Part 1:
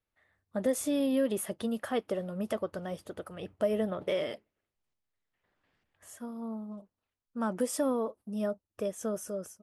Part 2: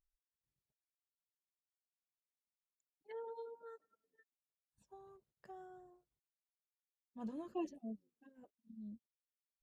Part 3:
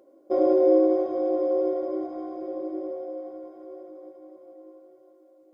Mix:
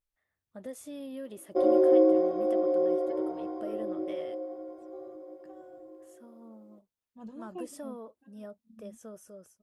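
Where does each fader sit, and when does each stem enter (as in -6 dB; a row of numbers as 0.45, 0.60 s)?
-12.5, -0.5, -2.0 dB; 0.00, 0.00, 1.25 s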